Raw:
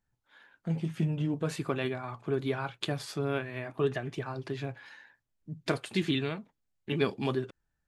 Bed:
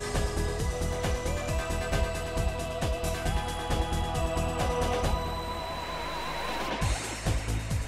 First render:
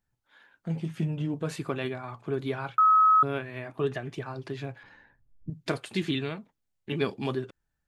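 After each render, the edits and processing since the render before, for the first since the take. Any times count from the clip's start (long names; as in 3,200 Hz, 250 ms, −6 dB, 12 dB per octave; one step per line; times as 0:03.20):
0:02.78–0:03.23: beep over 1,280 Hz −16 dBFS
0:04.83–0:05.50: spectral tilt −4.5 dB per octave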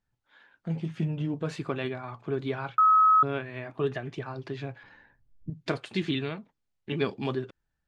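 low-pass filter 5,700 Hz 12 dB per octave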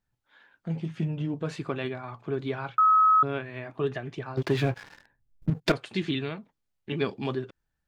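0:04.37–0:05.72: leveller curve on the samples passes 3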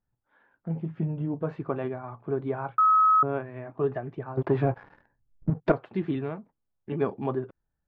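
low-pass filter 1,200 Hz 12 dB per octave
dynamic equaliser 820 Hz, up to +6 dB, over −40 dBFS, Q 0.95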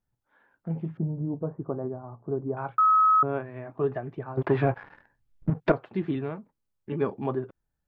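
0:00.97–0:02.57: Gaussian smoothing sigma 8.4 samples
0:04.41–0:05.70: parametric band 2,200 Hz +6.5 dB 2.4 octaves
0:06.31–0:07.10: notch filter 710 Hz, Q 6.7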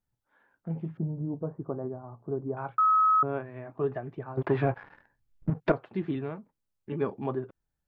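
level −2.5 dB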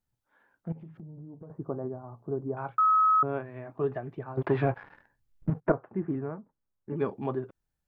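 0:00.72–0:01.50: downward compressor 8 to 1, threshold −42 dBFS
0:05.60–0:06.96: low-pass filter 1,600 Hz 24 dB per octave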